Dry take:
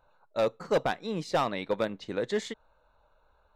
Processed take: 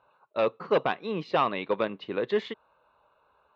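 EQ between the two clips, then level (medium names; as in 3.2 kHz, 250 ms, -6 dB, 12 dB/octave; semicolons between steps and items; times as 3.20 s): cabinet simulation 120–3900 Hz, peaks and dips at 390 Hz +5 dB, 1.1 kHz +8 dB, 2.7 kHz +7 dB; 0.0 dB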